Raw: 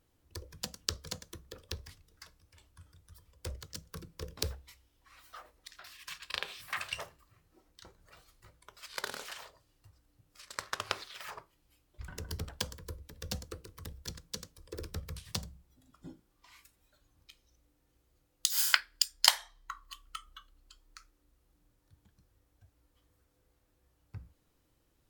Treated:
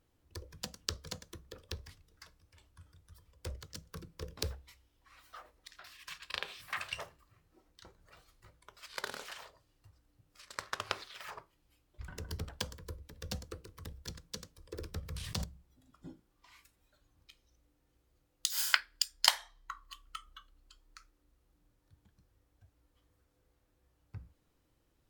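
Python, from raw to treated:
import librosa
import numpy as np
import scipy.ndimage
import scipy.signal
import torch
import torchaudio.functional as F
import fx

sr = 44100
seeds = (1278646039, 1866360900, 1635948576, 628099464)

y = fx.high_shelf(x, sr, hz=5400.0, db=-4.5)
y = fx.sustainer(y, sr, db_per_s=22.0, at=(15.01, 15.44))
y = y * librosa.db_to_amplitude(-1.0)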